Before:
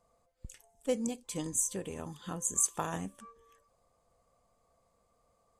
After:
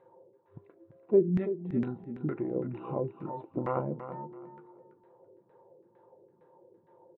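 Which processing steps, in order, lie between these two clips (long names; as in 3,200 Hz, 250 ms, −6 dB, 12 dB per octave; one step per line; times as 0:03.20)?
brick-wall band-pass 120–5,300 Hz
in parallel at 0 dB: downward compressor, threshold −50 dBFS, peak gain reduction 22.5 dB
on the sum: hollow resonant body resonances 440/640/1,300 Hz, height 10 dB
auto-filter low-pass saw down 2.8 Hz 250–2,400 Hz
speed change −22%
on a send: repeating echo 333 ms, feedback 23%, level −11 dB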